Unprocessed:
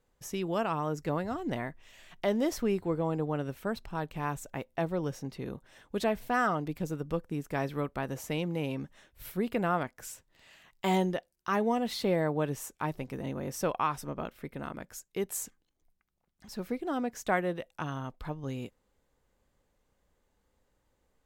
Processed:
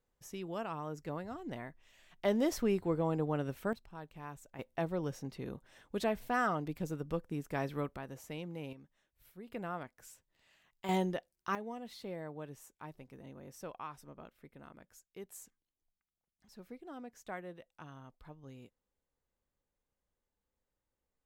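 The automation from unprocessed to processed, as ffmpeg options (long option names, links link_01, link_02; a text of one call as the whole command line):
ffmpeg -i in.wav -af "asetnsamples=nb_out_samples=441:pad=0,asendcmd='2.25 volume volume -2dB;3.73 volume volume -13dB;4.59 volume volume -4dB;7.97 volume volume -10.5dB;8.73 volume volume -19dB;9.48 volume volume -11.5dB;10.89 volume volume -4.5dB;11.55 volume volume -15dB',volume=-9dB" out.wav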